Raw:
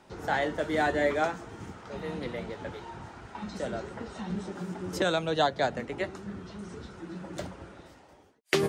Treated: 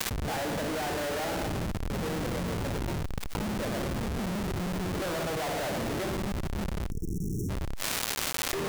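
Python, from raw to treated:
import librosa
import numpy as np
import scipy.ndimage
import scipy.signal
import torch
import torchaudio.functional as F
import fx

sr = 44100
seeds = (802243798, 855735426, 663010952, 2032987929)

y = fx.peak_eq(x, sr, hz=5300.0, db=-10.5, octaves=2.3)
y = fx.rev_spring(y, sr, rt60_s=1.5, pass_ms=(57,), chirp_ms=45, drr_db=5.0)
y = fx.schmitt(y, sr, flips_db=-37.0)
y = fx.dmg_crackle(y, sr, seeds[0], per_s=410.0, level_db=-53.0)
y = fx.spec_erase(y, sr, start_s=6.9, length_s=0.6, low_hz=460.0, high_hz=5400.0)
y = fx.env_flatten(y, sr, amount_pct=100)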